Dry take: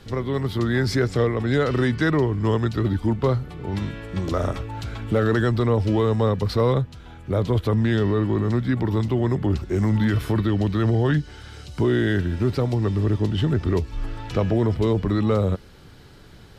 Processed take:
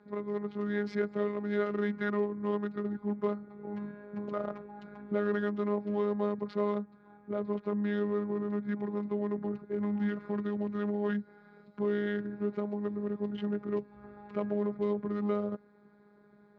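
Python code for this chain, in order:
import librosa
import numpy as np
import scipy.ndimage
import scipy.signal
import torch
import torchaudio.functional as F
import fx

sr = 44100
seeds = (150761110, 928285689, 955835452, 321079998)

y = fx.wiener(x, sr, points=15)
y = fx.robotise(y, sr, hz=206.0)
y = fx.bandpass_edges(y, sr, low_hz=160.0, high_hz=2700.0)
y = y * 10.0 ** (-7.0 / 20.0)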